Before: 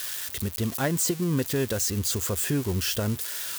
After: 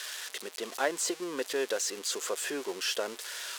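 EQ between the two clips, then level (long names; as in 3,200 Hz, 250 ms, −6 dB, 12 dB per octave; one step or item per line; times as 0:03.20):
high-pass filter 400 Hz 24 dB per octave
high-frequency loss of the air 55 metres
0.0 dB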